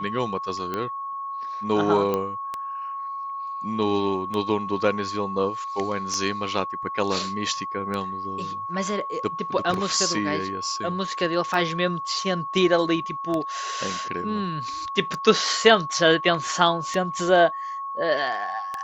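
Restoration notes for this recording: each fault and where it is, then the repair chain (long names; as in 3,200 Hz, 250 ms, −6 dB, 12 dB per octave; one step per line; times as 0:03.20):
scratch tick 33 1/3 rpm −15 dBFS
whistle 1,100 Hz −29 dBFS
0:02.14: click −12 dBFS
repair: click removal
notch filter 1,100 Hz, Q 30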